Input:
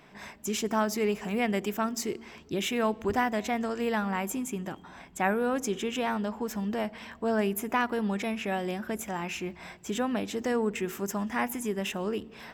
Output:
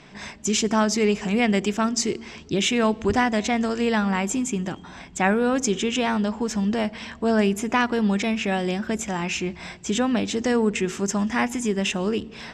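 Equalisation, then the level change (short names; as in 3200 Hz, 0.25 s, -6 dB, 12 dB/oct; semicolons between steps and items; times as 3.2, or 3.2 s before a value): LPF 7500 Hz 24 dB/oct; low shelf 400 Hz +9 dB; high shelf 2200 Hz +11.5 dB; +1.5 dB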